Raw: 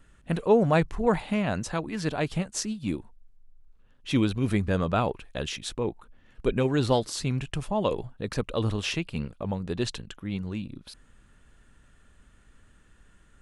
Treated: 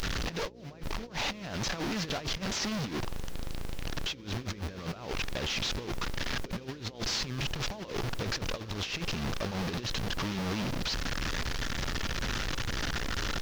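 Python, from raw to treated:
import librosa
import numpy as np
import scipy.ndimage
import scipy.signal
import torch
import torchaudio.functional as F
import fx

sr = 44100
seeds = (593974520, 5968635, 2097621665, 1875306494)

y = fx.delta_mod(x, sr, bps=32000, step_db=-25.5)
y = fx.high_shelf(y, sr, hz=2100.0, db=4.0)
y = fx.dmg_noise_colour(y, sr, seeds[0], colour='pink', level_db=-48.0)
y = fx.over_compress(y, sr, threshold_db=-30.0, ratio=-0.5)
y = fx.dmg_buzz(y, sr, base_hz=60.0, harmonics=9, level_db=-50.0, tilt_db=0, odd_only=False)
y = F.gain(torch.from_numpy(y), -3.5).numpy()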